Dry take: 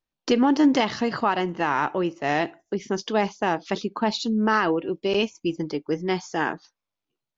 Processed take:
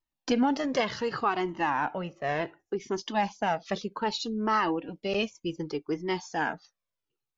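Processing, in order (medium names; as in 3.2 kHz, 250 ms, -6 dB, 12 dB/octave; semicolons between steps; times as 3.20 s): 1.70–2.80 s: treble shelf 4 kHz -10 dB; Shepard-style flanger falling 0.66 Hz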